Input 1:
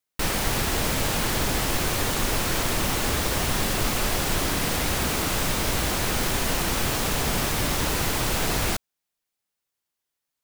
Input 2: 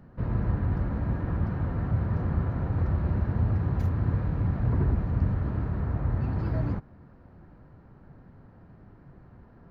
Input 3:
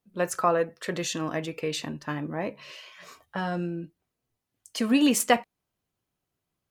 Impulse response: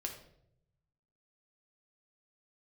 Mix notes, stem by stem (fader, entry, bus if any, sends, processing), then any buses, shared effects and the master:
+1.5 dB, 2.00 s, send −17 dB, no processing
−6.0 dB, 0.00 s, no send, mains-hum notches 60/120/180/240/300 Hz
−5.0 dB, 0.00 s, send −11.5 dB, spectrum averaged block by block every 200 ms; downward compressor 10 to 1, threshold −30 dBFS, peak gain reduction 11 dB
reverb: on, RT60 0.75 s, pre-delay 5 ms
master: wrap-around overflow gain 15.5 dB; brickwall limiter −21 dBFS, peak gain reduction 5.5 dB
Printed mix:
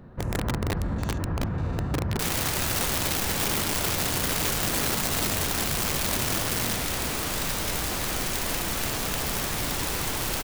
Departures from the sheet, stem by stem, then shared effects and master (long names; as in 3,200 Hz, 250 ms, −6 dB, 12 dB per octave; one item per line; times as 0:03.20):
stem 1: send off
stem 2 −6.0 dB → +4.5 dB
stem 3 −5.0 dB → −11.5 dB